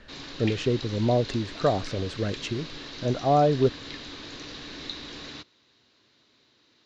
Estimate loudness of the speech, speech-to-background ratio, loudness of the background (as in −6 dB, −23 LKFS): −26.5 LKFS, 12.0 dB, −38.5 LKFS